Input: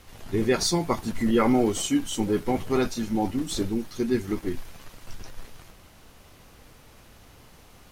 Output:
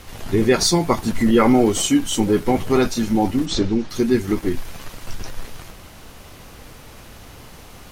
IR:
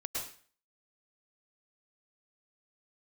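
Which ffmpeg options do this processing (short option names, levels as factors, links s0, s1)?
-filter_complex "[0:a]asplit=3[s0][s1][s2];[s0]afade=t=out:st=3.45:d=0.02[s3];[s1]lowpass=f=6200:w=0.5412,lowpass=f=6200:w=1.3066,afade=t=in:st=3.45:d=0.02,afade=t=out:st=3.89:d=0.02[s4];[s2]afade=t=in:st=3.89:d=0.02[s5];[s3][s4][s5]amix=inputs=3:normalize=0,asplit=2[s6][s7];[s7]acompressor=threshold=0.0282:ratio=6,volume=0.841[s8];[s6][s8]amix=inputs=2:normalize=0,volume=1.78"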